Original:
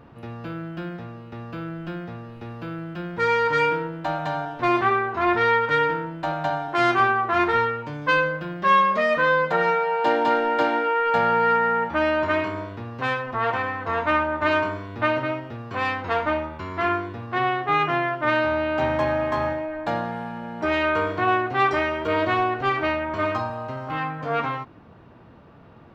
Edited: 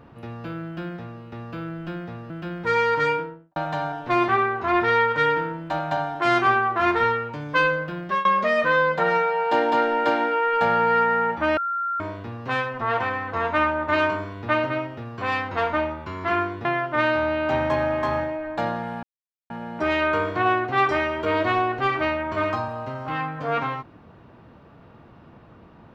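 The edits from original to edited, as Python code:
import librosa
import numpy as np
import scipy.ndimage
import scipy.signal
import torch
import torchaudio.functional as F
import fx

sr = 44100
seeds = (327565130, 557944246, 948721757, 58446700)

y = fx.studio_fade_out(x, sr, start_s=3.49, length_s=0.6)
y = fx.edit(y, sr, fx.cut(start_s=2.3, length_s=0.53),
    fx.fade_out_to(start_s=8.52, length_s=0.26, curve='qsin', floor_db=-22.5),
    fx.bleep(start_s=12.1, length_s=0.43, hz=1380.0, db=-23.0),
    fx.cut(start_s=17.18, length_s=0.76),
    fx.insert_silence(at_s=20.32, length_s=0.47), tone=tone)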